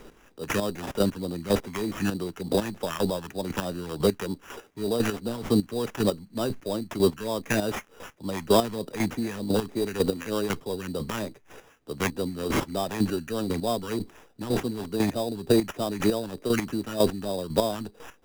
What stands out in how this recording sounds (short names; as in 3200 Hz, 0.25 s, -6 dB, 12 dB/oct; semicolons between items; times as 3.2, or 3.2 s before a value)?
phasing stages 2, 3.3 Hz, lowest notch 590–2600 Hz; chopped level 2 Hz, depth 65%, duty 20%; aliases and images of a low sample rate 4300 Hz, jitter 0%